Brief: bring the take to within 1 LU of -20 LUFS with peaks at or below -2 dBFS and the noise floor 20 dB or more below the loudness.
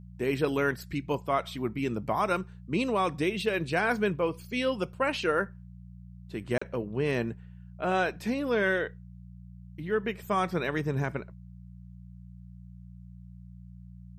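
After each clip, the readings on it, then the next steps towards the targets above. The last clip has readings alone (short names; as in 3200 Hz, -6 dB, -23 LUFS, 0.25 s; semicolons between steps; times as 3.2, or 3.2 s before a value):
dropouts 1; longest dropout 35 ms; hum 60 Hz; harmonics up to 180 Hz; hum level -45 dBFS; loudness -30.0 LUFS; peak -13.5 dBFS; loudness target -20.0 LUFS
-> interpolate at 6.58, 35 ms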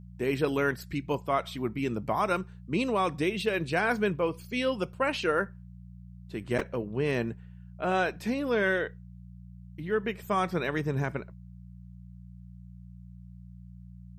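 dropouts 0; hum 60 Hz; harmonics up to 180 Hz; hum level -45 dBFS
-> de-hum 60 Hz, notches 3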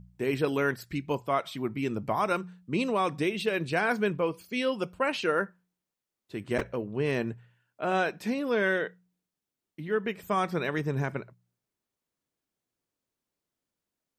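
hum none; loudness -30.0 LUFS; peak -14.0 dBFS; loudness target -20.0 LUFS
-> gain +10 dB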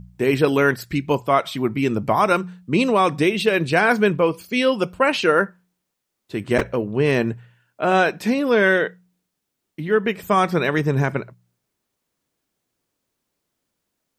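loudness -20.0 LUFS; peak -4.0 dBFS; noise floor -78 dBFS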